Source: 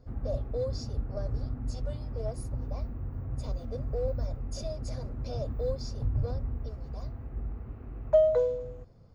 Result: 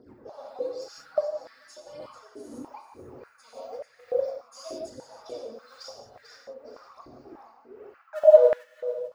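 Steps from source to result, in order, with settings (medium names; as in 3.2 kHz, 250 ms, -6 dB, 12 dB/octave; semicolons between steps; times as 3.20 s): random holes in the spectrogram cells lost 27%; phaser 1 Hz, delay 4.6 ms, feedback 77%; on a send: thinning echo 442 ms, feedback 28%, high-pass 1.2 kHz, level -10.5 dB; on the sum: gated-style reverb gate 200 ms flat, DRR -1 dB; tremolo 1.9 Hz, depth 55%; 0.64–2.07 s: comb 6.2 ms, depth 86%; step-sequenced high-pass 3.4 Hz 330–1800 Hz; trim -3.5 dB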